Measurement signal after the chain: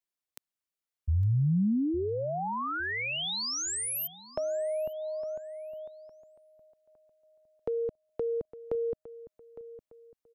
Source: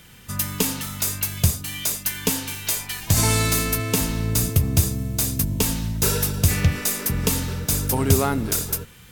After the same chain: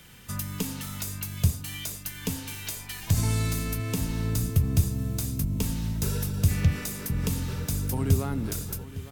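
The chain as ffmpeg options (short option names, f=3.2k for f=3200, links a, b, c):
-filter_complex "[0:a]acrossover=split=250[a][b];[b]acompressor=threshold=-32dB:ratio=3[c];[a][c]amix=inputs=2:normalize=0,asplit=2[d][e];[e]adelay=859,lowpass=f=3.5k:p=1,volume=-15.5dB,asplit=2[f][g];[g]adelay=859,lowpass=f=3.5k:p=1,volume=0.37,asplit=2[h][i];[i]adelay=859,lowpass=f=3.5k:p=1,volume=0.37[j];[f][h][j]amix=inputs=3:normalize=0[k];[d][k]amix=inputs=2:normalize=0,volume=-3dB"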